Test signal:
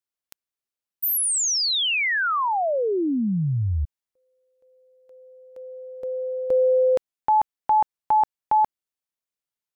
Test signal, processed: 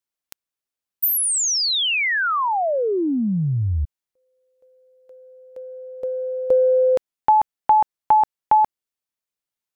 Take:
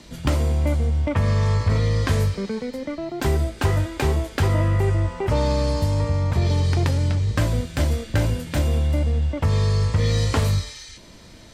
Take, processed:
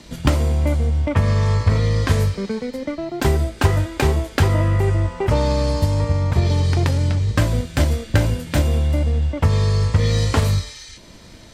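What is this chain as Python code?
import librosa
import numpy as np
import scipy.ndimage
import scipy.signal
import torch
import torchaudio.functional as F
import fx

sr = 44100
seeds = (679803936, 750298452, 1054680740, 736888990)

y = fx.transient(x, sr, attack_db=4, sustain_db=-1)
y = y * librosa.db_to_amplitude(2.0)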